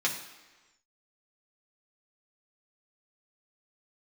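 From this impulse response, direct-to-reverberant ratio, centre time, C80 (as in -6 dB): -3.0 dB, 25 ms, 10.0 dB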